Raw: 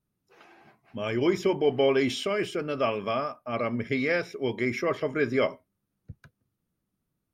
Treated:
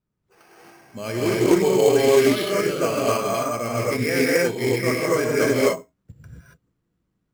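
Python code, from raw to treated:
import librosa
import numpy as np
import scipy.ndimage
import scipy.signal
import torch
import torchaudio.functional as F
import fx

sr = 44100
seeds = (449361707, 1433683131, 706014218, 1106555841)

y = scipy.signal.sosfilt(scipy.signal.butter(4, 3600.0, 'lowpass', fs=sr, output='sos'), x)
y = fx.quant_float(y, sr, bits=4)
y = fx.rev_gated(y, sr, seeds[0], gate_ms=300, shape='rising', drr_db=-6.0)
y = np.repeat(y[::6], 6)[:len(y)]
y = fx.doppler_dist(y, sr, depth_ms=0.11)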